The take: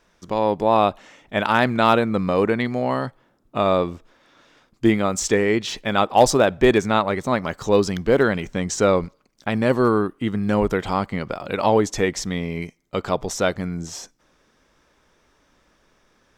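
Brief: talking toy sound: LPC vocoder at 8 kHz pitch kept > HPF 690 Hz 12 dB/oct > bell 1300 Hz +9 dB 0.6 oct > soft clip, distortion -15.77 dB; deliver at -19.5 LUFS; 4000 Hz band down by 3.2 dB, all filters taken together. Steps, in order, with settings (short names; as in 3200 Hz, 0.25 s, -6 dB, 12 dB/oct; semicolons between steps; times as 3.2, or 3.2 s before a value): bell 4000 Hz -4.5 dB; LPC vocoder at 8 kHz pitch kept; HPF 690 Hz 12 dB/oct; bell 1300 Hz +9 dB 0.6 oct; soft clip -8 dBFS; gain +4.5 dB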